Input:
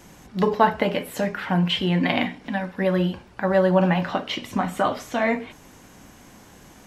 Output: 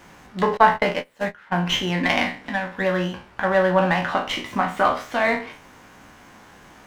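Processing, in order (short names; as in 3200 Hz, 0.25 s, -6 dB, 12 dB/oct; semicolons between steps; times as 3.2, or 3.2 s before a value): spectral trails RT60 0.37 s; 0.57–1.67 gate -22 dBFS, range -22 dB; bell 1400 Hz +9 dB 2.5 oct; running maximum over 3 samples; gain -4.5 dB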